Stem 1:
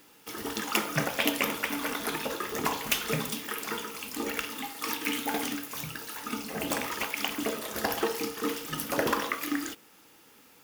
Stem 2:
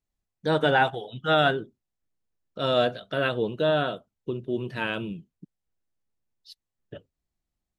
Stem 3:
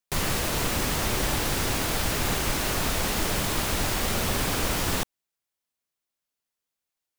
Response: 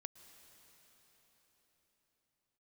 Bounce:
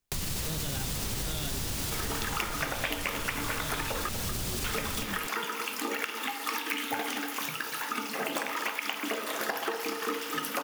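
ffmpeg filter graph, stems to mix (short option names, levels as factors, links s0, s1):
-filter_complex "[0:a]highpass=220,equalizer=f=1500:t=o:w=2.6:g=6.5,adelay=1650,volume=1.26,asplit=3[s0][s1][s2];[s0]atrim=end=4.09,asetpts=PTS-STARTPTS,afade=t=out:st=4.086:d=0.004:c=hsin[s3];[s1]atrim=start=4.09:end=4.64,asetpts=PTS-STARTPTS,volume=0[s4];[s2]atrim=start=4.64,asetpts=PTS-STARTPTS,afade=t=in:d=0.004:c=hsin[s5];[s3][s4][s5]concat=n=3:v=0:a=1,asplit=2[s6][s7];[s7]volume=0.251[s8];[1:a]volume=0.891[s9];[2:a]volume=1.19,asplit=2[s10][s11];[s11]volume=0.237[s12];[s9][s10]amix=inputs=2:normalize=0,acrossover=split=240|3000[s13][s14][s15];[s14]acompressor=threshold=0.0112:ratio=6[s16];[s13][s16][s15]amix=inputs=3:normalize=0,alimiter=limit=0.1:level=0:latency=1,volume=1[s17];[s8][s12]amix=inputs=2:normalize=0,aecho=0:1:239:1[s18];[s6][s17][s18]amix=inputs=3:normalize=0,acompressor=threshold=0.0355:ratio=6"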